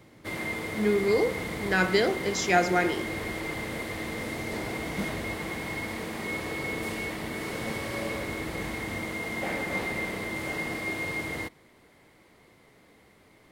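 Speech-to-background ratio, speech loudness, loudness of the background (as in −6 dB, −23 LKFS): 6.0 dB, −26.5 LKFS, −32.5 LKFS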